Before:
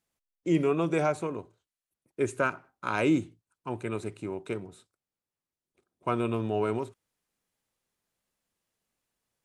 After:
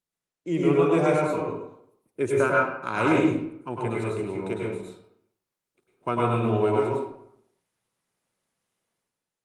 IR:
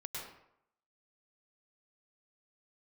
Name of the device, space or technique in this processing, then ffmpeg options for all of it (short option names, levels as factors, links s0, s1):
far-field microphone of a smart speaker: -filter_complex "[1:a]atrim=start_sample=2205[s0];[0:a][s0]afir=irnorm=-1:irlink=0,highpass=91,dynaudnorm=f=110:g=9:m=3.55,volume=0.631" -ar 48000 -c:a libopus -b:a 32k